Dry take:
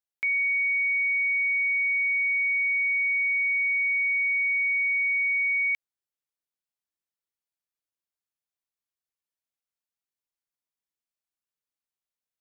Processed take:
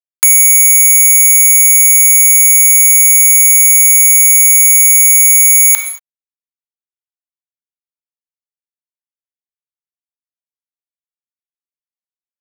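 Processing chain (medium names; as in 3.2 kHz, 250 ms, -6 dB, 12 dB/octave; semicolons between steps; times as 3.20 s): send-on-delta sampling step -50.5 dBFS; Bessel high-pass 2.3 kHz, order 6; sine folder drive 19 dB, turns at -19.5 dBFS; short-mantissa float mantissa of 4-bit; gated-style reverb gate 250 ms falling, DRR 10.5 dB; loudness maximiser +24.5 dB; trim -1 dB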